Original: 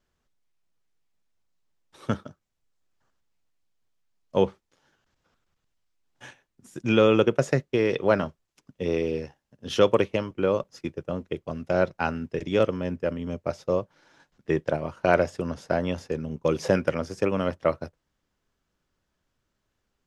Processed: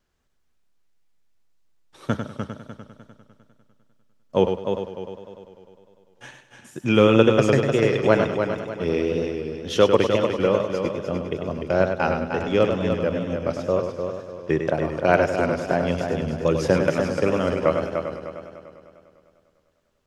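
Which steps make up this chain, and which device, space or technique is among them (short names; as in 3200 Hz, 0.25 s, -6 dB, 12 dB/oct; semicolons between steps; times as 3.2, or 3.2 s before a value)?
multi-head tape echo (multi-head echo 0.1 s, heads first and third, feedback 56%, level -7 dB; wow and flutter 47 cents); gain +2.5 dB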